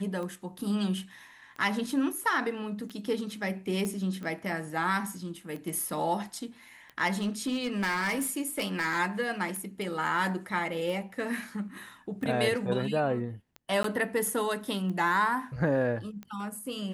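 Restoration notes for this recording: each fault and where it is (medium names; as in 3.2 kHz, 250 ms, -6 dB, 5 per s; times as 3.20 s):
tick 45 rpm -28 dBFS
3.85 s: pop -21 dBFS
7.13–9.00 s: clipped -25 dBFS
13.83–13.84 s: dropout 13 ms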